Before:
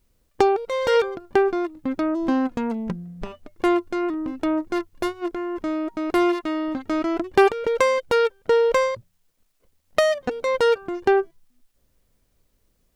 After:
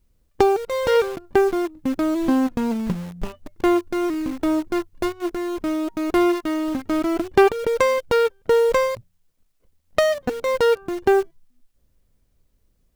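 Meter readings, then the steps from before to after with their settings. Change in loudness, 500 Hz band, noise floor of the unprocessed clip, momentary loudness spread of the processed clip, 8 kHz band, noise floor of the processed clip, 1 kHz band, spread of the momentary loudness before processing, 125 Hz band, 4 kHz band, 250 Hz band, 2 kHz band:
+1.5 dB, +1.5 dB, -68 dBFS, 8 LU, +3.0 dB, -66 dBFS, 0.0 dB, 9 LU, +4.5 dB, +0.5 dB, +2.5 dB, 0.0 dB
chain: bass shelf 230 Hz +7.5 dB; in parallel at -5.5 dB: bit crusher 5-bit; on the sum: trim -4 dB

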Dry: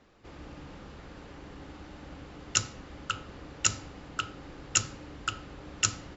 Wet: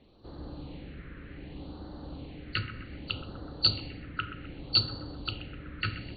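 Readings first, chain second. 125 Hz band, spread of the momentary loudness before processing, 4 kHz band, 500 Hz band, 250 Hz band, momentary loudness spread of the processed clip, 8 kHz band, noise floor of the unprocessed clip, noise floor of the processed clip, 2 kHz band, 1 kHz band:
+4.0 dB, 18 LU, +5.5 dB, +0.5 dB, +3.0 dB, 19 LU, no reading, -49 dBFS, -47 dBFS, -1.5 dB, -4.0 dB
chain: knee-point frequency compression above 3.9 kHz 4:1; distance through air 72 m; on a send: bucket-brigade echo 127 ms, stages 2048, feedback 62%, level -12 dB; on the sum: Schroeder reverb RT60 0.88 s, combs from 31 ms, DRR 13.5 dB; phase shifter stages 4, 0.65 Hz, lowest notch 790–2300 Hz; trim +2.5 dB

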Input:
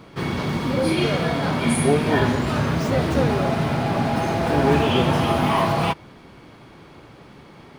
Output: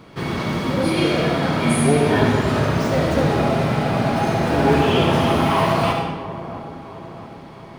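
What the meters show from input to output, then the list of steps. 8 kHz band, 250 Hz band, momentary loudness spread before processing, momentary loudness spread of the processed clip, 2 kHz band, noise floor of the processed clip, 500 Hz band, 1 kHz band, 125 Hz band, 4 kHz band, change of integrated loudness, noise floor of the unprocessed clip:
+1.5 dB, +2.0 dB, 5 LU, 17 LU, +2.0 dB, -39 dBFS, +2.5 dB, +2.5 dB, +2.0 dB, +2.0 dB, +2.0 dB, -46 dBFS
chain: feedback echo behind a low-pass 667 ms, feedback 50%, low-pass 1.2 kHz, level -13 dB; algorithmic reverb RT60 1.1 s, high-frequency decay 0.85×, pre-delay 30 ms, DRR 1.5 dB

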